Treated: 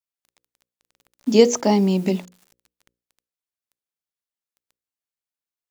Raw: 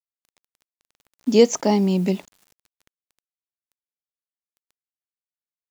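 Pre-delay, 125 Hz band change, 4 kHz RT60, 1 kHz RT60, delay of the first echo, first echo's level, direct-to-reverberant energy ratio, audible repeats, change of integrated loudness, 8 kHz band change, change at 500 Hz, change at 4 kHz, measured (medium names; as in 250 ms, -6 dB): no reverb, +0.5 dB, no reverb, no reverb, no echo, no echo, no reverb, no echo, +1.0 dB, no reading, +1.0 dB, +1.5 dB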